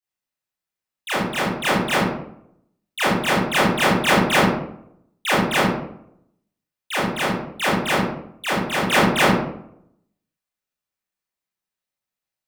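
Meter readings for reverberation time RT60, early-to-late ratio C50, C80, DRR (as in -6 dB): 0.70 s, 0.5 dB, 5.0 dB, -11.0 dB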